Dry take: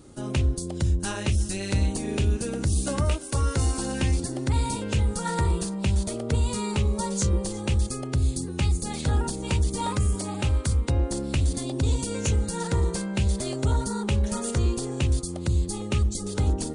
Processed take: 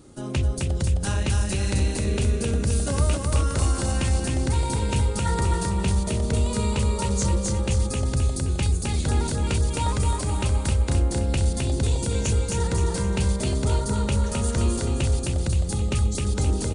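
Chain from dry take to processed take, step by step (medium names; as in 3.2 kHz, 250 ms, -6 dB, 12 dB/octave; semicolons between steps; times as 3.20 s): feedback delay 262 ms, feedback 46%, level -3 dB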